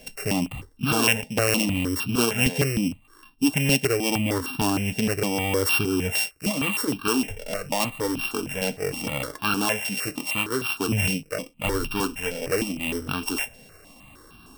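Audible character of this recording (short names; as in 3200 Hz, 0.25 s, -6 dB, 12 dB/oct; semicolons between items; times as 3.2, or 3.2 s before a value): a buzz of ramps at a fixed pitch in blocks of 16 samples; notches that jump at a steady rate 6.5 Hz 320–2000 Hz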